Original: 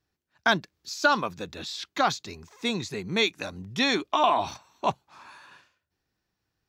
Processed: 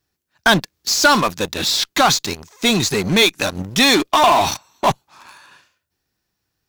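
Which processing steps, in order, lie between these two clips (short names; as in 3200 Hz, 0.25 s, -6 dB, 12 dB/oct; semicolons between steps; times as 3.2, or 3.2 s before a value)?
high shelf 5500 Hz +9.5 dB; in parallel at -7 dB: fuzz box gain 34 dB, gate -40 dBFS; on the sum: gain +3.5 dB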